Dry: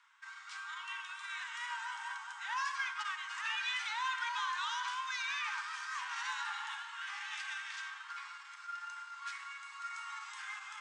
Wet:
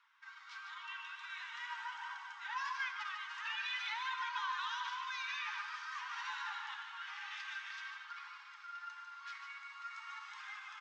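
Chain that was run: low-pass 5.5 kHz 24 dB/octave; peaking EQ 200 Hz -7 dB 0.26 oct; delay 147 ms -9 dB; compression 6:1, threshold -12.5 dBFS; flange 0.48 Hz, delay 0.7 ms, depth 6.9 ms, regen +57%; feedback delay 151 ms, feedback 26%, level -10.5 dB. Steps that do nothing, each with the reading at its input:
peaking EQ 200 Hz: input has nothing below 760 Hz; compression, threshold -12.5 dBFS: peak at its input -25.0 dBFS

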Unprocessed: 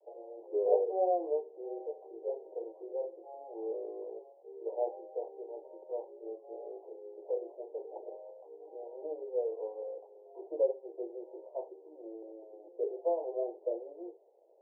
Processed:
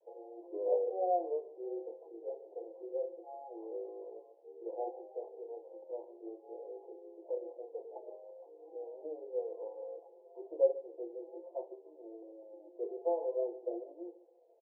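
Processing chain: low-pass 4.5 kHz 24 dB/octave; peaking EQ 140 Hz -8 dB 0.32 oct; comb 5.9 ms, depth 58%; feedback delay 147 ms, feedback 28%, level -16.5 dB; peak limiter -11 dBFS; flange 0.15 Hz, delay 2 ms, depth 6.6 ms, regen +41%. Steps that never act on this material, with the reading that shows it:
low-pass 4.5 kHz: input has nothing above 960 Hz; peaking EQ 140 Hz: input has nothing below 300 Hz; peak limiter -11 dBFS: peak at its input -14.0 dBFS

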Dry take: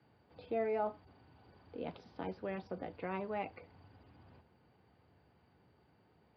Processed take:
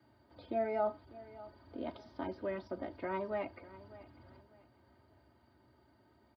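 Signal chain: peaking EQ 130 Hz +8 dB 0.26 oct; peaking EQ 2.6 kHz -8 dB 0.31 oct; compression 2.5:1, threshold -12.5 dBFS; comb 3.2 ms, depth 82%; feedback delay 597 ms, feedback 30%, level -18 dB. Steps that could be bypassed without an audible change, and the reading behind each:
compression, threshold -12.5 dBFS: peak at its input -24.5 dBFS

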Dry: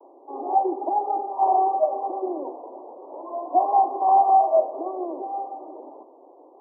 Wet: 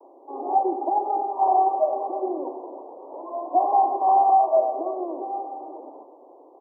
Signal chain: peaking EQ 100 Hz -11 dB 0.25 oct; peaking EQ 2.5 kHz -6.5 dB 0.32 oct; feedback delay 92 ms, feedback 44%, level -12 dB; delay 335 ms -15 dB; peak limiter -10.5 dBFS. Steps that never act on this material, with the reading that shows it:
peaking EQ 100 Hz: input has nothing below 270 Hz; peaking EQ 2.5 kHz: input has nothing above 1.2 kHz

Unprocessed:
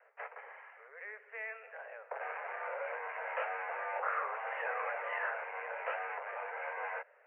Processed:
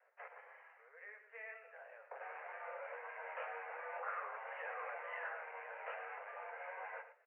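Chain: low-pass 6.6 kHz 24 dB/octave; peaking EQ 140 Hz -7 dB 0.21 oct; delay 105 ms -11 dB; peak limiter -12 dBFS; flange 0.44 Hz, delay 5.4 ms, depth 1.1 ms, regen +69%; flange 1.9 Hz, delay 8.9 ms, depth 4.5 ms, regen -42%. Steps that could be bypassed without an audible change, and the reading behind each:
low-pass 6.6 kHz: input has nothing above 3 kHz; peaking EQ 140 Hz: input has nothing below 360 Hz; peak limiter -12 dBFS: peak at its input -21.5 dBFS

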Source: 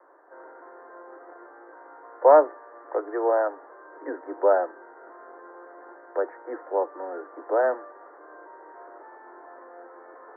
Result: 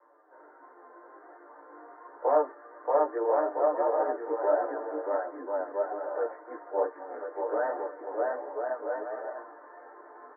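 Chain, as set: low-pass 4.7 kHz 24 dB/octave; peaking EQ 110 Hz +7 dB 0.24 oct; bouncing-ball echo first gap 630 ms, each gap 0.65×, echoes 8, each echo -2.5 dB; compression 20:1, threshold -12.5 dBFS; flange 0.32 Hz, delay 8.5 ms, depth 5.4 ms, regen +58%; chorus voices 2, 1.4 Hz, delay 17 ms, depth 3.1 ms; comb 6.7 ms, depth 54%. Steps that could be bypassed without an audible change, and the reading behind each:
low-pass 4.7 kHz: input has nothing above 1.8 kHz; peaking EQ 110 Hz: input has nothing below 250 Hz

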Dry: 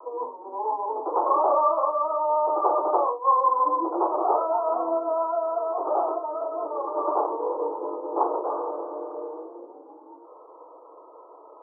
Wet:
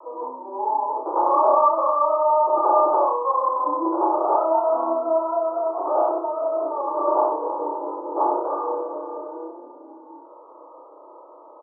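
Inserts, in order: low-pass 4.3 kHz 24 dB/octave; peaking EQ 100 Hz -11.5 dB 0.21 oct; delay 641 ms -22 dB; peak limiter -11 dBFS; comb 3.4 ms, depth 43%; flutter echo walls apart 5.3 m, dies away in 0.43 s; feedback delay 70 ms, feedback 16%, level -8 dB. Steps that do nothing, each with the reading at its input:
low-pass 4.3 kHz: input has nothing above 1.4 kHz; peaking EQ 100 Hz: input has nothing below 270 Hz

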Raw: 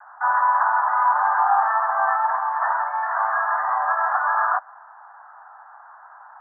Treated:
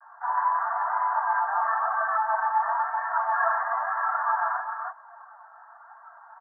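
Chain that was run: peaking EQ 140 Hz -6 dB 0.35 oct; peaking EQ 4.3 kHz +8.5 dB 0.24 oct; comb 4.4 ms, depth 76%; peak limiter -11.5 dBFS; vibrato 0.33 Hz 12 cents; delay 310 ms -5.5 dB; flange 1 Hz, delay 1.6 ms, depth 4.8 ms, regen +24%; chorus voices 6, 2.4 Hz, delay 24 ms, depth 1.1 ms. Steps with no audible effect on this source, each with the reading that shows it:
peaking EQ 140 Hz: input has nothing below 570 Hz; peaking EQ 4.3 kHz: input has nothing above 1.9 kHz

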